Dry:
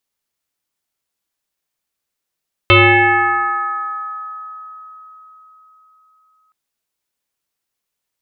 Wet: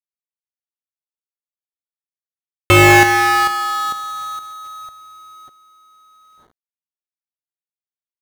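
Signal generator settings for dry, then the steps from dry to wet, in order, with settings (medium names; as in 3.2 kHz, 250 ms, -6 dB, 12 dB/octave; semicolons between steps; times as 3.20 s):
FM tone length 3.82 s, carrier 1.27 kHz, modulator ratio 0.36, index 4.1, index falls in 3.57 s exponential, decay 4.34 s, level -4.5 dB
square wave that keeps the level; companded quantiser 4-bit; treble shelf 3.3 kHz -10 dB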